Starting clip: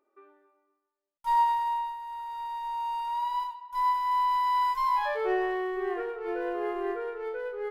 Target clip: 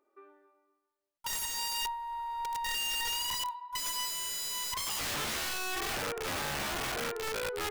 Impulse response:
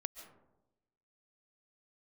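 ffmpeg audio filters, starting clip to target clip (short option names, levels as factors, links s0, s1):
-filter_complex "[0:a]asettb=1/sr,asplit=3[s0][s1][s2];[s0]atrim=end=1.324[s3];[s1]atrim=start=1.32:end=3.41,asetpts=PTS-STARTPTS,afade=t=in:d=0.004:c=qsin,afade=t=out:st=2.086:d=0.004:c=qsin,lowshelf=f=93:g=9.5[s4];[s2]atrim=start=3.406[s5];[s3][s4]acrossfade=d=0.004:c1=hsin:c2=qsin[s6];[s6][s5]acrossfade=d=0.004:c1=qsin:c2=hsin,aeval=exprs='(mod(31.6*val(0)+1,2)-1)/31.6':c=same"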